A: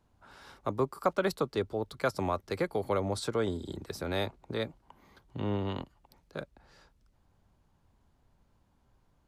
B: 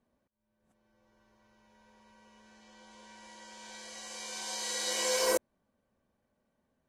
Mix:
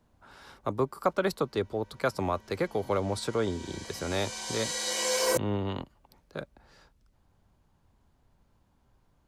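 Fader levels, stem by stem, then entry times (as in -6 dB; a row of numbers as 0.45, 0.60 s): +1.5, +2.0 dB; 0.00, 0.00 s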